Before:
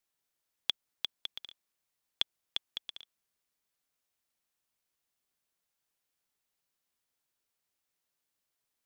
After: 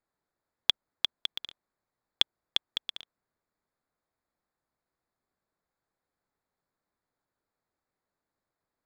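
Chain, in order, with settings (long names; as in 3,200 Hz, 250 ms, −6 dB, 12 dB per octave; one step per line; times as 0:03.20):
adaptive Wiener filter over 15 samples
level +7.5 dB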